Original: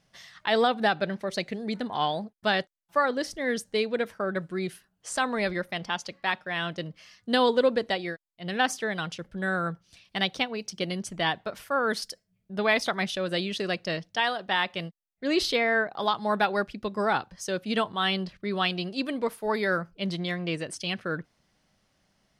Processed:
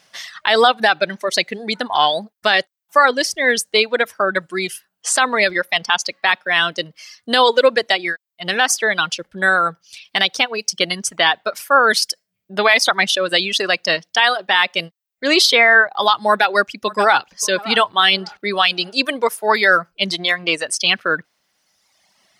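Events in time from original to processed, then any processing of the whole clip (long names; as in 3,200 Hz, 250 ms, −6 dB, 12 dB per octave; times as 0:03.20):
0:16.28–0:17.27: delay throw 580 ms, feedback 40%, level −15.5 dB
whole clip: reverb reduction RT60 1.3 s; high-pass filter 1,000 Hz 6 dB per octave; boost into a limiter +18.5 dB; level −1 dB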